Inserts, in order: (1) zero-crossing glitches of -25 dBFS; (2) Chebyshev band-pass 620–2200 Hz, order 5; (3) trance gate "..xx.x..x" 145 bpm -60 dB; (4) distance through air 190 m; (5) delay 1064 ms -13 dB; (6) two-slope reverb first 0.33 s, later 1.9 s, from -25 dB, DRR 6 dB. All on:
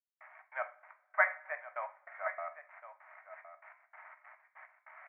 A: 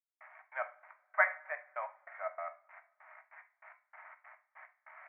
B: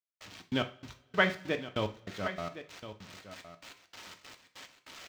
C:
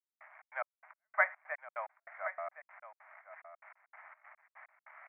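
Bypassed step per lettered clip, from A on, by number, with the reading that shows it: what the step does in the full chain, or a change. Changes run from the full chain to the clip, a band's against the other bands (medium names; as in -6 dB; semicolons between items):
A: 5, momentary loudness spread change +1 LU; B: 2, momentary loudness spread change -2 LU; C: 6, echo-to-direct -5.0 dB to -13.0 dB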